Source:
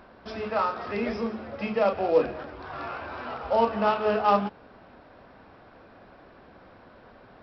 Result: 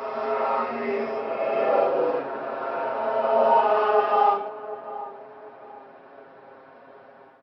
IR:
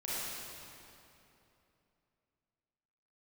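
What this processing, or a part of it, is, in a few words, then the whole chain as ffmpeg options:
ghost voice: -filter_complex "[0:a]aemphasis=mode=reproduction:type=riaa,aecho=1:1:7.4:0.97,areverse[s0];[1:a]atrim=start_sample=2205[s1];[s0][s1]afir=irnorm=-1:irlink=0,areverse,highpass=490,asplit=2[s2][s3];[s3]adelay=744,lowpass=f=860:p=1,volume=0.224,asplit=2[s4][s5];[s5]adelay=744,lowpass=f=860:p=1,volume=0.42,asplit=2[s6][s7];[s7]adelay=744,lowpass=f=860:p=1,volume=0.42,asplit=2[s8][s9];[s9]adelay=744,lowpass=f=860:p=1,volume=0.42[s10];[s2][s4][s6][s8][s10]amix=inputs=5:normalize=0,volume=0.708"

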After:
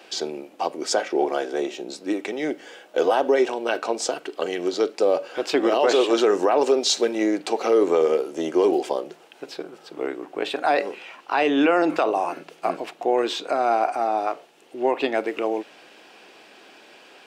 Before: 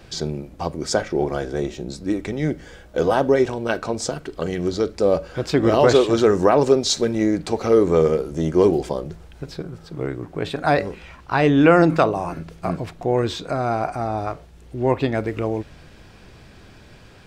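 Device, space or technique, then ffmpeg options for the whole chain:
laptop speaker: -af "highpass=f=300:w=0.5412,highpass=f=300:w=1.3066,equalizer=f=780:t=o:w=0.44:g=4.5,equalizer=f=2800:t=o:w=0.45:g=7,alimiter=limit=0.316:level=0:latency=1:release=53"

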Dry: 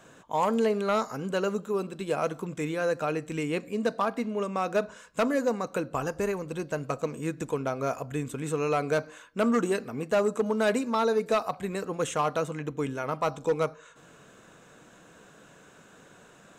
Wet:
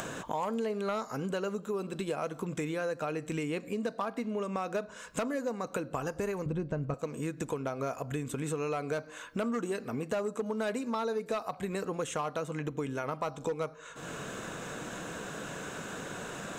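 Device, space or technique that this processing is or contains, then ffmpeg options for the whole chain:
upward and downward compression: -filter_complex "[0:a]asettb=1/sr,asplit=3[s0][s1][s2];[s0]atrim=end=6.464[s3];[s1]atrim=start=6.46:end=6.94,asetpts=PTS-STARTPTS,afade=t=in:d=0.004:c=qsin,afade=t=out:st=0.476:d=0.004:c=qsin,aemphasis=mode=reproduction:type=riaa[s4];[s2]atrim=start=6.936[s5];[s3][s4]acrossfade=d=0.004:c1=hsin:c2=qsin[s6];[s6][s5]acrossfade=d=0.004:c1=qsin:c2=hsin,acompressor=mode=upward:threshold=0.0447:ratio=2.5,acompressor=threshold=0.0282:ratio=4"

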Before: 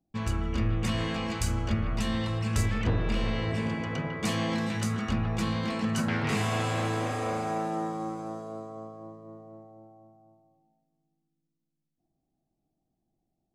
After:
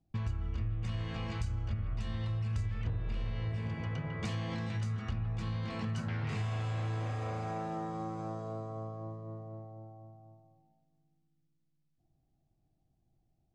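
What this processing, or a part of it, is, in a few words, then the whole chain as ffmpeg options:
jukebox: -af "lowpass=6000,lowshelf=f=160:t=q:w=1.5:g=8.5,acompressor=threshold=0.0178:ratio=4"

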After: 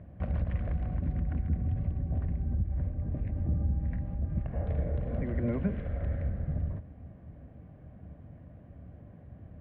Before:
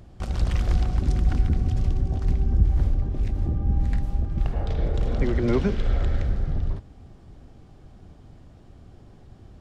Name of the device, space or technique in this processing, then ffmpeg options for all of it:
bass amplifier: -af "acompressor=threshold=0.0631:ratio=6,highpass=69,equalizer=f=74:t=q:w=4:g=5,equalizer=f=170:t=q:w=4:g=3,equalizer=f=380:t=q:w=4:g=-10,equalizer=f=590:t=q:w=4:g=5,equalizer=f=850:t=q:w=4:g=-9,equalizer=f=1300:t=q:w=4:g=-9,lowpass=f=2000:w=0.5412,lowpass=f=2000:w=1.3066"

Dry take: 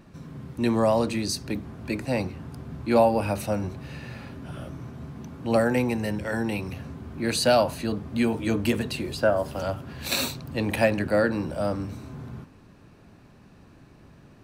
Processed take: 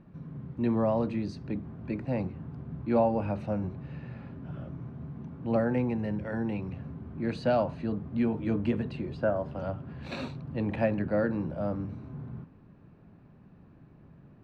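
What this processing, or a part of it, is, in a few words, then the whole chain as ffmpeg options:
phone in a pocket: -filter_complex "[0:a]asettb=1/sr,asplit=3[s0][s1][s2];[s0]atrim=end=7.654[s3];[s1]atrim=start=7.65:end=8.8,asetpts=PTS-STARTPTS,afade=t=in:d=0.004:c=qsin,afade=t=out:st=1.146:d=0.004:c=qsin,lowpass=11000[s4];[s2]atrim=start=8.796[s5];[s3][s4]acrossfade=d=0.004:c1=hsin:c2=qsin[s6];[s6][s5]acrossfade=d=0.004:c1=qsin:c2=hsin,lowpass=3400,equalizer=f=160:t=o:w=0.94:g=6,highshelf=f=2200:g=-11,volume=0.531"

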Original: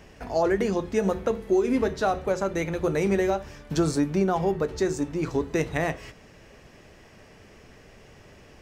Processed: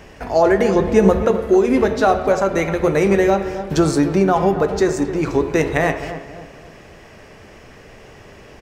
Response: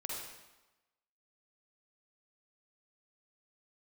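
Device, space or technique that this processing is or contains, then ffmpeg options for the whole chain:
filtered reverb send: -filter_complex "[0:a]asplit=2[s0][s1];[s1]highpass=290,lowpass=3300[s2];[1:a]atrim=start_sample=2205[s3];[s2][s3]afir=irnorm=-1:irlink=0,volume=0.473[s4];[s0][s4]amix=inputs=2:normalize=0,asettb=1/sr,asplit=3[s5][s6][s7];[s5]atrim=end=0.754[s8];[s6]atrim=start=0.75:end=1.25,asetpts=PTS-STARTPTS,afade=t=in:d=0.004:c=qsin,afade=t=out:st=0.496:d=0.004:c=qsin,lowshelf=f=220:g=9.5[s9];[s7]atrim=start=1.246[s10];[s8][s9]acrossfade=d=0.004:c1=hsin:c2=qsin[s11];[s11][s10]acrossfade=d=0.004:c1=qsin:c2=hsin,asplit=2[s12][s13];[s13]adelay=268,lowpass=f=1500:p=1,volume=0.282,asplit=2[s14][s15];[s15]adelay=268,lowpass=f=1500:p=1,volume=0.42,asplit=2[s16][s17];[s17]adelay=268,lowpass=f=1500:p=1,volume=0.42,asplit=2[s18][s19];[s19]adelay=268,lowpass=f=1500:p=1,volume=0.42[s20];[s12][s14][s16][s18][s20]amix=inputs=5:normalize=0,volume=2.24"

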